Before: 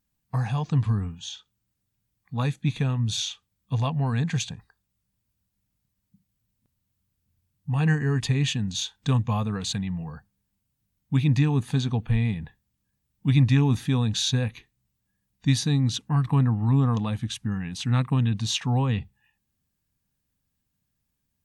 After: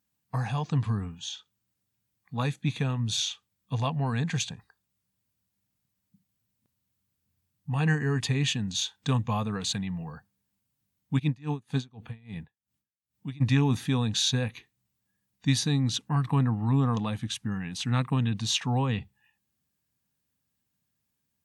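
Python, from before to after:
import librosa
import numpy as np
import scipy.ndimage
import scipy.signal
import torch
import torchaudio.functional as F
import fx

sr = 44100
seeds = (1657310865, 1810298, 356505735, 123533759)

y = scipy.signal.sosfilt(scipy.signal.butter(2, 79.0, 'highpass', fs=sr, output='sos'), x)
y = fx.low_shelf(y, sr, hz=200.0, db=-5.0)
y = fx.tremolo_db(y, sr, hz=fx.line((11.18, 4.7), (13.4, 1.9)), depth_db=30, at=(11.18, 13.4), fade=0.02)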